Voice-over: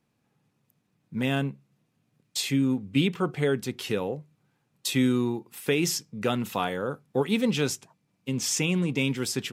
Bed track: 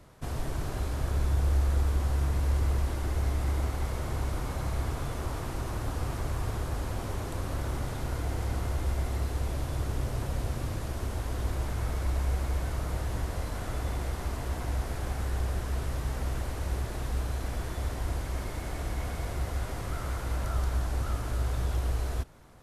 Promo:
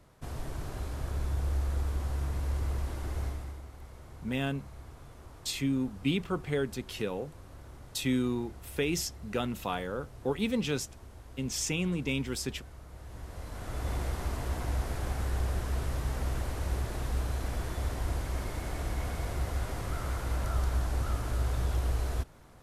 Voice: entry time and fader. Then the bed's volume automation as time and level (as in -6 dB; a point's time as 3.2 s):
3.10 s, -5.5 dB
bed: 3.24 s -5 dB
3.63 s -16.5 dB
12.9 s -16.5 dB
13.93 s -0.5 dB